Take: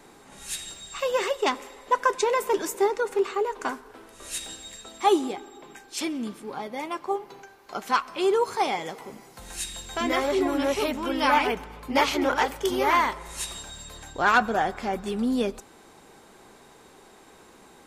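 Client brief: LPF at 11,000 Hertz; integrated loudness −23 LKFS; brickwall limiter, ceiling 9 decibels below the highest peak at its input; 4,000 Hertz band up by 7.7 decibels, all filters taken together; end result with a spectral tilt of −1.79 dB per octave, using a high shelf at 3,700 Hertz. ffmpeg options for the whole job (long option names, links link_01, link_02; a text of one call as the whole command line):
ffmpeg -i in.wav -af "lowpass=11000,highshelf=frequency=3700:gain=7,equalizer=frequency=4000:width_type=o:gain=5.5,volume=3dB,alimiter=limit=-10dB:level=0:latency=1" out.wav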